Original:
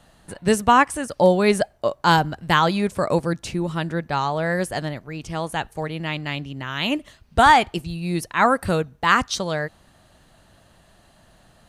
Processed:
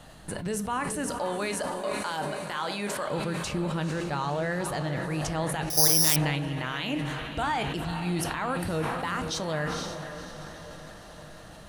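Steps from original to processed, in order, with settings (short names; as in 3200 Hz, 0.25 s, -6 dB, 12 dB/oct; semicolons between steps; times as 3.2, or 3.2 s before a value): 1.1–3.08 HPF 790 Hz 6 dB/oct; compressor 2:1, threshold -39 dBFS, peak gain reduction 16 dB; limiter -25.5 dBFS, peak gain reduction 10 dB; diffused feedback echo 0.499 s, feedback 61%, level -9 dB; reverb RT60 0.40 s, pre-delay 6 ms, DRR 11 dB; 5.7–6.16 careless resampling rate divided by 8×, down filtered, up zero stuff; sustainer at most 26 dB/s; gain +4 dB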